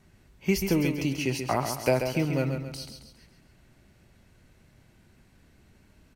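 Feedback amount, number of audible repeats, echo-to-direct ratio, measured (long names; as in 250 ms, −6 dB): 43%, 4, −6.0 dB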